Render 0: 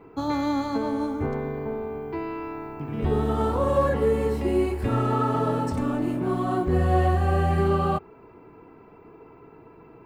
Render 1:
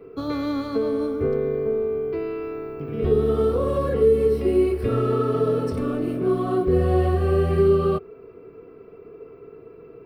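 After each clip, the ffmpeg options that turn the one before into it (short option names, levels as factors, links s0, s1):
-filter_complex "[0:a]superequalizer=7b=2.82:9b=0.282:11b=0.708:15b=0.316,acrossover=split=450|3000[s0][s1][s2];[s1]acompressor=threshold=0.0562:ratio=6[s3];[s0][s3][s2]amix=inputs=3:normalize=0"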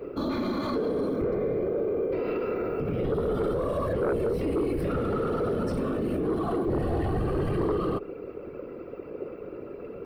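-af "afftfilt=real='hypot(re,im)*cos(2*PI*random(0))':imag='hypot(re,im)*sin(2*PI*random(1))':win_size=512:overlap=0.75,aeval=exprs='0.299*sin(PI/2*2.24*val(0)/0.299)':c=same,alimiter=limit=0.0841:level=0:latency=1:release=54"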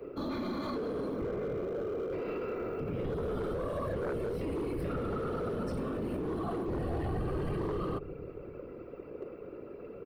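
-filter_complex "[0:a]acrossover=split=190|770[s0][s1][s2];[s0]aecho=1:1:295|590|885|1180|1475|1770:0.355|0.188|0.0997|0.0528|0.028|0.0148[s3];[s1]asoftclip=type=hard:threshold=0.0398[s4];[s3][s4][s2]amix=inputs=3:normalize=0,volume=0.501"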